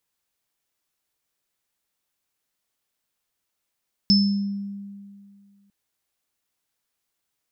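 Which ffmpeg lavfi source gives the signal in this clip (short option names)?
-f lavfi -i "aevalsrc='0.2*pow(10,-3*t/2.16)*sin(2*PI*200*t)+0.2*pow(10,-3*t/0.57)*sin(2*PI*5260*t)':d=1.6:s=44100"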